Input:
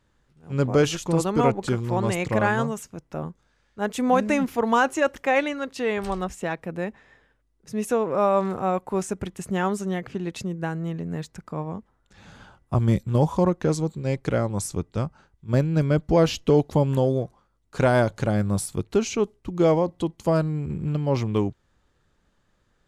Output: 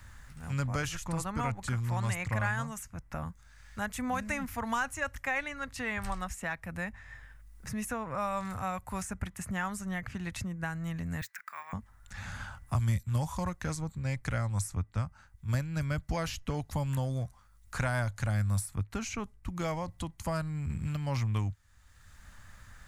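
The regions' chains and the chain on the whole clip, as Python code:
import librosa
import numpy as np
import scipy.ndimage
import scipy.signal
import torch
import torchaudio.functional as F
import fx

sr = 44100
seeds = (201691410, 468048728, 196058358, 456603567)

y = fx.chain(x, sr, fx.highpass_res(hz=1800.0, q=2.0),
    fx.resample_bad(factor=2, down='none', up='hold'), at=(11.21, 11.73))
y = fx.curve_eq(y, sr, hz=(100.0, 150.0, 250.0, 390.0, 620.0, 1200.0, 1900.0, 3200.0, 11000.0), db=(0, -13, -15, -27, -15, -8, -4, -12, -1))
y = fx.band_squash(y, sr, depth_pct=70)
y = y * librosa.db_to_amplitude(1.5)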